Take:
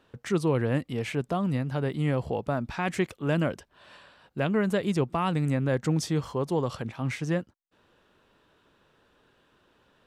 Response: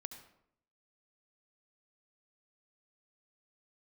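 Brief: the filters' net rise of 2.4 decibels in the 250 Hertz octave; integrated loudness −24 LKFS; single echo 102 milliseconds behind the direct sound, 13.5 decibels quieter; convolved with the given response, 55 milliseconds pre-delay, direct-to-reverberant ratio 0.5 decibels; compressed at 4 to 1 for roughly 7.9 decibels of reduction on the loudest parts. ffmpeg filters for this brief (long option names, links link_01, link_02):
-filter_complex "[0:a]equalizer=frequency=250:width_type=o:gain=3.5,acompressor=threshold=-29dB:ratio=4,aecho=1:1:102:0.211,asplit=2[link_01][link_02];[1:a]atrim=start_sample=2205,adelay=55[link_03];[link_02][link_03]afir=irnorm=-1:irlink=0,volume=3.5dB[link_04];[link_01][link_04]amix=inputs=2:normalize=0,volume=6dB"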